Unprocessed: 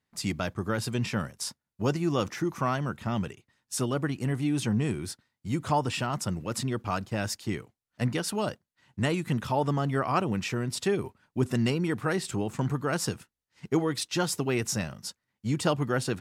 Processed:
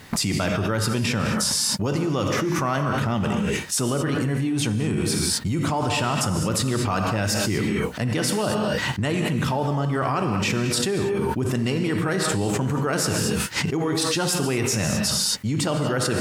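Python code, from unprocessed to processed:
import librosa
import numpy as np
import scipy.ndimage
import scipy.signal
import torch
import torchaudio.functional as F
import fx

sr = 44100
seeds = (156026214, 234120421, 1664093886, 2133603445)

y = fx.rev_gated(x, sr, seeds[0], gate_ms=260, shape='flat', drr_db=5.5)
y = fx.env_flatten(y, sr, amount_pct=100)
y = y * 10.0 ** (-2.5 / 20.0)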